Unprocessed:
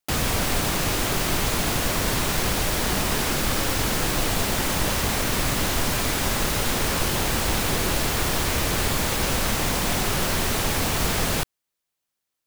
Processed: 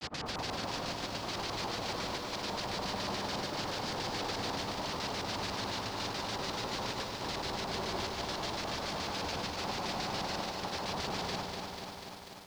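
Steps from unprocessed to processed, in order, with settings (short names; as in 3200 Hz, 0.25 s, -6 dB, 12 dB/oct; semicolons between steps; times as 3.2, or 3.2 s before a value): HPF 160 Hz 6 dB/oct; limiter -20 dBFS, peak gain reduction 8 dB; chopper 0.84 Hz, depth 60%, duty 85%; grains 0.1 s, grains 20/s; LFO low-pass square 7 Hz 940–4700 Hz; on a send: dark delay 85 ms, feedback 73%, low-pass 740 Hz, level -7 dB; on the sum: lo-fi delay 0.245 s, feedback 80%, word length 8-bit, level -5 dB; gain -8.5 dB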